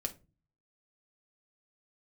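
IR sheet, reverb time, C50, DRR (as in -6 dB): 0.30 s, 16.5 dB, 3.5 dB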